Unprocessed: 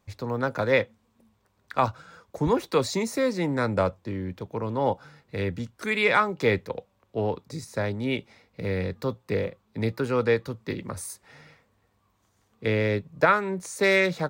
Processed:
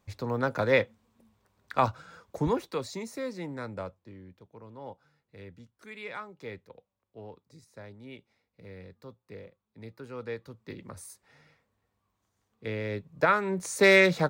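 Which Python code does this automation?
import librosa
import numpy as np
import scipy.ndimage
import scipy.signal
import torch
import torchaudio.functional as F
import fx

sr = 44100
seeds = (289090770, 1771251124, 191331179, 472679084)

y = fx.gain(x, sr, db=fx.line((2.38, -1.5), (2.8, -10.5), (3.37, -10.5), (4.46, -18.5), (9.83, -18.5), (10.85, -9.5), (12.83, -9.5), (13.71, 2.0)))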